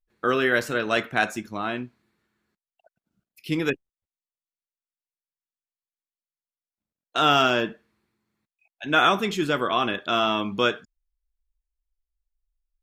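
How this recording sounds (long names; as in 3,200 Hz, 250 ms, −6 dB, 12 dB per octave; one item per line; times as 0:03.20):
background noise floor −96 dBFS
spectral slope −2.0 dB per octave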